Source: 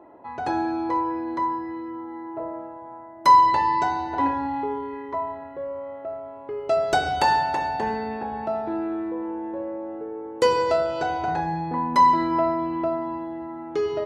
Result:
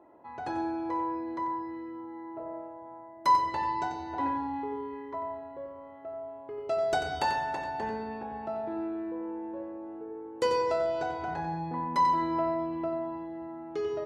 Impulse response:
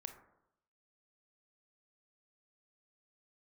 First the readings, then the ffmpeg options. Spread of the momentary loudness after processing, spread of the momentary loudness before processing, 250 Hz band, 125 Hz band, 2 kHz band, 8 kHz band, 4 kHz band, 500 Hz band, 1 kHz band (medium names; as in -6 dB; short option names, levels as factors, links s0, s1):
15 LU, 16 LU, -6.5 dB, -6.5 dB, -8.0 dB, no reading, -8.0 dB, -6.5 dB, -8.5 dB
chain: -filter_complex "[0:a]asplit=2[s0][s1];[1:a]atrim=start_sample=2205,adelay=91[s2];[s1][s2]afir=irnorm=-1:irlink=0,volume=0.668[s3];[s0][s3]amix=inputs=2:normalize=0,volume=0.376"